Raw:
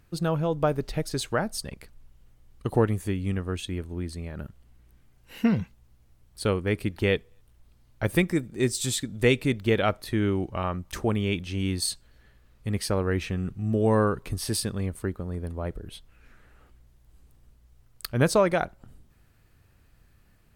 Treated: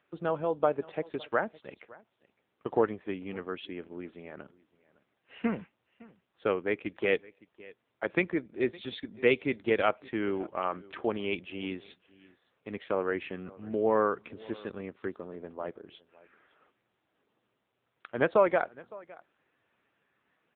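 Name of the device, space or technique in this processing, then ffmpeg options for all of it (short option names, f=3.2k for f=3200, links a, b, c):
satellite phone: -filter_complex "[0:a]asplit=3[a][b][c];[a]afade=t=out:st=14.22:d=0.02[d];[b]equalizer=f=700:t=o:w=0.55:g=-5,afade=t=in:st=14.22:d=0.02,afade=t=out:st=15.05:d=0.02[e];[c]afade=t=in:st=15.05:d=0.02[f];[d][e][f]amix=inputs=3:normalize=0,highpass=360,lowpass=3.3k,aecho=1:1:561:0.0794" -ar 8000 -c:a libopencore_amrnb -b:a 6700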